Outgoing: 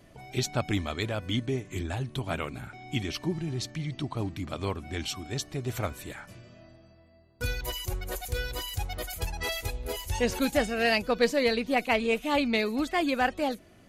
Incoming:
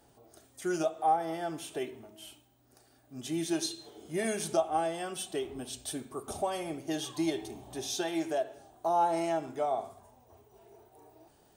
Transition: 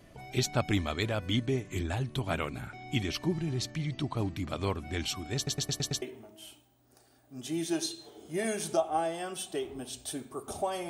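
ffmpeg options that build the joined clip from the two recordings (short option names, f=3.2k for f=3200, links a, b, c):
-filter_complex "[0:a]apad=whole_dur=10.89,atrim=end=10.89,asplit=6[a][b][c][d][e][f];[a]atrim=end=5.472[g];[b]atrim=start=5.358:end=5.472[h];[c]atrim=start=5.358:end=5.472[i];[d]atrim=start=5.358:end=5.472[j];[e]atrim=start=5.358:end=5.472[k];[f]atrim=start=5.358:end=5.472[l];[1:a]atrim=start=1.818:end=6.69[m];[g][h]acrossfade=d=0.004:c1=hsin:c2=hsin[n];[n][i]acrossfade=d=0.004:c1=hsin:c2=hsin[o];[o][j]acrossfade=d=0.004:c1=hsin:c2=hsin[p];[p][k]acrossfade=d=0.004:c1=hsin:c2=hsin[q];[q][l]acrossfade=d=0.004:c1=hsin:c2=hsin[r];[r][m]acrossfade=d=0.004:c1=hsin:c2=hsin"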